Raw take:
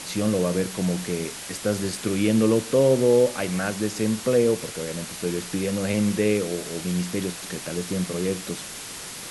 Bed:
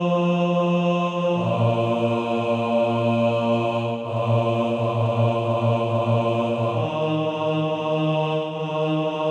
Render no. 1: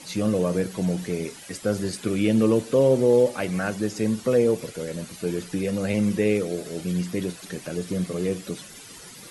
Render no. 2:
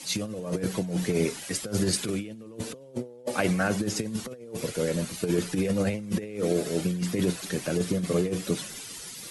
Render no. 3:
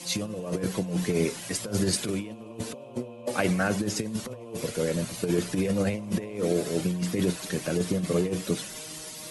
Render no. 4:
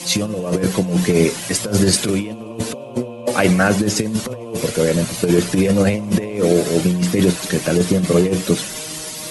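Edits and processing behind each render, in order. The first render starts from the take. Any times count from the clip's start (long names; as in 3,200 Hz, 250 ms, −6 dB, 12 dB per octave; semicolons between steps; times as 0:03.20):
broadband denoise 12 dB, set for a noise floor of −37 dBFS
compressor whose output falls as the input rises −27 dBFS, ratio −0.5; multiband upward and downward expander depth 40%
mix in bed −26 dB
level +11 dB; brickwall limiter −1 dBFS, peak gain reduction 2 dB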